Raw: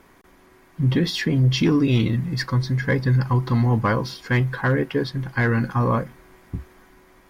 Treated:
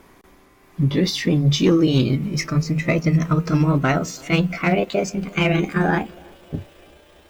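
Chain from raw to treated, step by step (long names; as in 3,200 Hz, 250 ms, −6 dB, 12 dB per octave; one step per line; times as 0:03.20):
pitch glide at a constant tempo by +8.5 semitones starting unshifted
parametric band 1,600 Hz −3.5 dB 0.77 octaves
feedback echo with a band-pass in the loop 330 ms, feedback 66%, band-pass 510 Hz, level −23.5 dB
level +3.5 dB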